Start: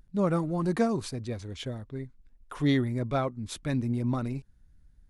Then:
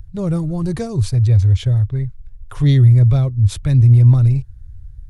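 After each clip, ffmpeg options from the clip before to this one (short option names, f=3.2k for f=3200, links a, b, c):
-filter_complex "[0:a]lowshelf=f=150:t=q:w=3:g=13.5,acrossover=split=470|3100[a][b][c];[b]acompressor=threshold=-45dB:ratio=6[d];[a][d][c]amix=inputs=3:normalize=0,volume=8dB"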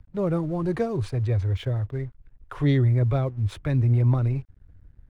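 -filter_complex "[0:a]acrossover=split=230 2700:gain=0.2 1 0.126[a][b][c];[a][b][c]amix=inputs=3:normalize=0,aeval=exprs='sgn(val(0))*max(abs(val(0))-0.00168,0)':c=same,volume=1dB"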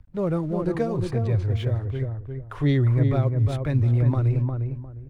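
-filter_complex "[0:a]asplit=2[a][b];[b]adelay=354,lowpass=f=1.2k:p=1,volume=-4dB,asplit=2[c][d];[d]adelay=354,lowpass=f=1.2k:p=1,volume=0.26,asplit=2[e][f];[f]adelay=354,lowpass=f=1.2k:p=1,volume=0.26,asplit=2[g][h];[h]adelay=354,lowpass=f=1.2k:p=1,volume=0.26[i];[a][c][e][g][i]amix=inputs=5:normalize=0"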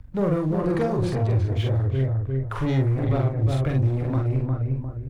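-filter_complex "[0:a]asplit=2[a][b];[b]acompressor=threshold=-29dB:ratio=6,volume=0dB[c];[a][c]amix=inputs=2:normalize=0,asoftclip=type=tanh:threshold=-19dB,asplit=2[d][e];[e]adelay=45,volume=-3dB[f];[d][f]amix=inputs=2:normalize=0"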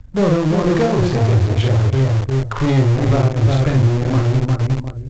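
-filter_complex "[0:a]asplit=2[a][b];[b]acrusher=bits=3:mix=0:aa=0.000001,volume=-8dB[c];[a][c]amix=inputs=2:normalize=0,volume=4.5dB" -ar 16000 -c:a pcm_mulaw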